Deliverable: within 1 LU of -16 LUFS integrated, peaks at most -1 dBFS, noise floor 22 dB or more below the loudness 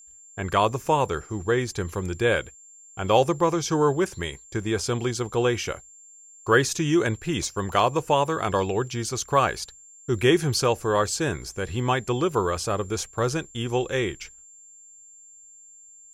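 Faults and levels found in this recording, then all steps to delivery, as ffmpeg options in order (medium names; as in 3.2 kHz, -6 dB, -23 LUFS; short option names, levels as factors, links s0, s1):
steady tone 7.3 kHz; tone level -47 dBFS; loudness -24.5 LUFS; peak level -5.0 dBFS; loudness target -16.0 LUFS
-> -af "bandreject=f=7300:w=30"
-af "volume=2.66,alimiter=limit=0.891:level=0:latency=1"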